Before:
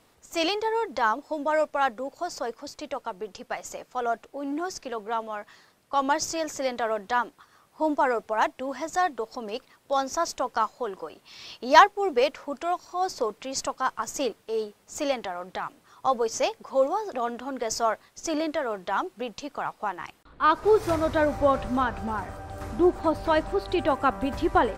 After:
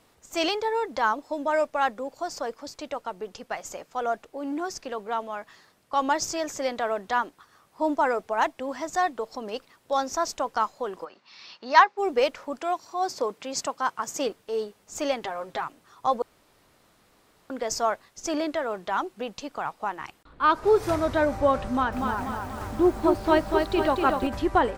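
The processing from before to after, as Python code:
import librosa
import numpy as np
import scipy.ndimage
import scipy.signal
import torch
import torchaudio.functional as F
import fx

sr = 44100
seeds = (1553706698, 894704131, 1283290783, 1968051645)

y = fx.cabinet(x, sr, low_hz=250.0, low_slope=12, high_hz=5100.0, hz=(300.0, 430.0, 660.0, 3200.0), db=(-7, -9, -7, -7), at=(11.04, 11.97), fade=0.02)
y = fx.highpass(y, sr, hz=100.0, slope=12, at=(12.59, 14.27))
y = fx.comb(y, sr, ms=7.5, depth=0.65, at=(15.22, 15.64))
y = fx.echo_crushed(y, sr, ms=241, feedback_pct=55, bits=8, wet_db=-4, at=(21.68, 24.27))
y = fx.edit(y, sr, fx.room_tone_fill(start_s=16.22, length_s=1.28), tone=tone)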